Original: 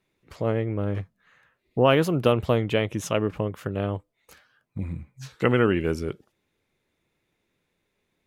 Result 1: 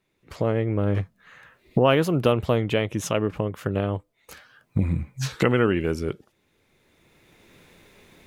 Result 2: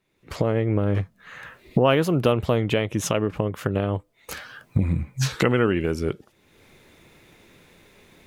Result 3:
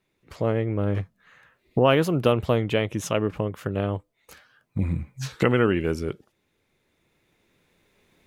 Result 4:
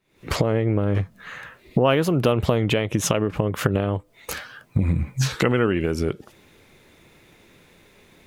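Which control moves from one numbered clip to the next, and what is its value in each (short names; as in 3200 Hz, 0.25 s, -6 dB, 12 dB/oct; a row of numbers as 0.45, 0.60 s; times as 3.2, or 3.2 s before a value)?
recorder AGC, rising by: 13, 32, 5.3, 88 dB/s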